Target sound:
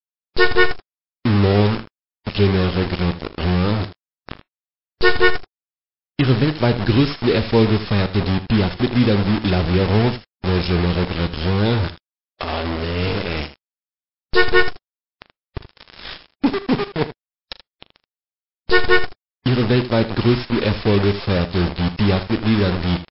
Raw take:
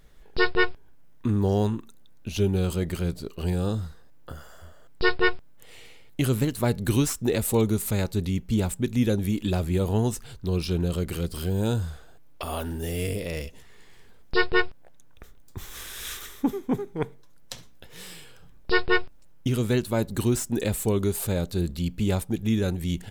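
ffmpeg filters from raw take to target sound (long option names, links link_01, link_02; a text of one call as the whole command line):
ffmpeg -i in.wav -af "acrusher=bits=4:mix=0:aa=0.000001,aecho=1:1:39|79:0.15|0.2,volume=7.5dB" -ar 12000 -c:a libmp3lame -b:a 32k out.mp3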